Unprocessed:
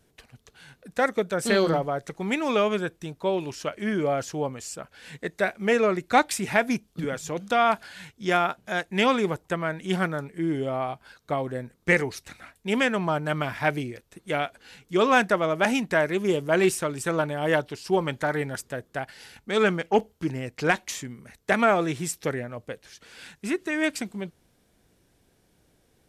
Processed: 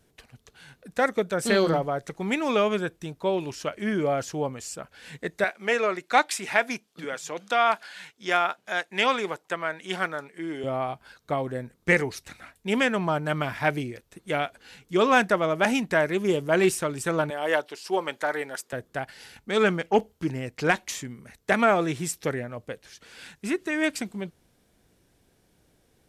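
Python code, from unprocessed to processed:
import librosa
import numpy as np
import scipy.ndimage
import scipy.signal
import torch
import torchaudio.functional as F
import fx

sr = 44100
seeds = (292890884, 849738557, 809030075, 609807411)

y = fx.weighting(x, sr, curve='A', at=(5.44, 10.64))
y = fx.highpass(y, sr, hz=410.0, slope=12, at=(17.3, 18.73))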